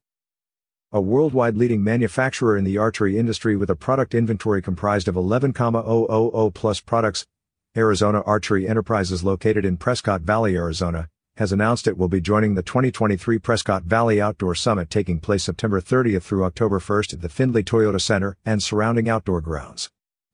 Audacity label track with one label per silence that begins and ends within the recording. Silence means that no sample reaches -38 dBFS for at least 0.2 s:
7.230000	7.760000	silence
11.070000	11.380000	silence